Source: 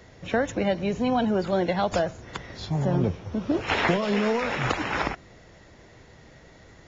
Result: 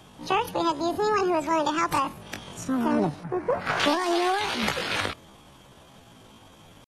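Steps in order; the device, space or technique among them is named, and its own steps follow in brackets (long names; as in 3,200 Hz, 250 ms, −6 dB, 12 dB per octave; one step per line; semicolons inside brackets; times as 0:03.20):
0:03.25–0:03.82: high shelf with overshoot 1,500 Hz −11 dB, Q 1.5
chipmunk voice (pitch shifter +9 semitones)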